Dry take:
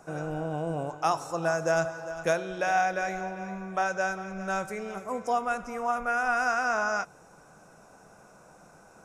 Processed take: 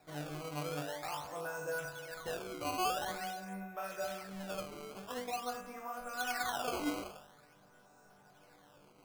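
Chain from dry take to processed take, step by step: limiter -20.5 dBFS, peak gain reduction 8.5 dB; resonator bank G2 major, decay 0.72 s; decimation with a swept rate 14×, swing 160% 0.47 Hz; gain +9 dB

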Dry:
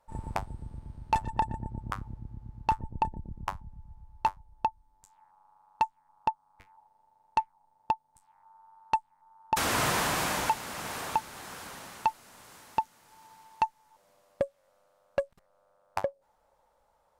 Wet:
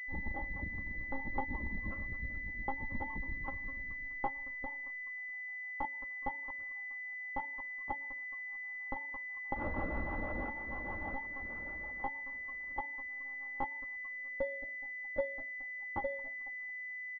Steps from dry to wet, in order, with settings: frequency-shifting echo 0.212 s, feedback 43%, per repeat +97 Hz, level -17.5 dB; monotone LPC vocoder at 8 kHz 270 Hz; comb 3.6 ms, depth 67%; sample leveller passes 1; 4.65–5.85 resonator 86 Hz, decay 0.39 s, harmonics all, mix 50%; reverb RT60 0.45 s, pre-delay 3 ms, DRR 14.5 dB; compressor 2:1, threshold -29 dBFS, peak gain reduction 7.5 dB; rotary speaker horn 6.3 Hz; pulse-width modulation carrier 2000 Hz; gain -4.5 dB

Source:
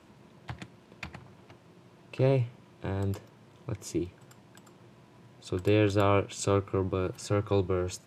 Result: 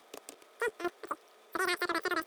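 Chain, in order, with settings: level quantiser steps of 10 dB; wide varispeed 3.56×

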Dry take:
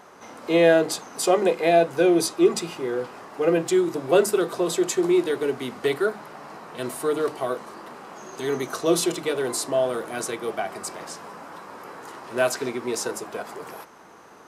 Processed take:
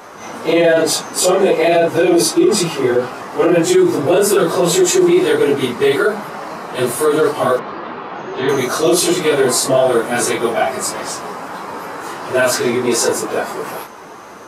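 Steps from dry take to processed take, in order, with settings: phase scrambler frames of 0.1 s; 7.59–8.49 LPF 3800 Hz 24 dB/oct; maximiser +16.5 dB; gain -3.5 dB

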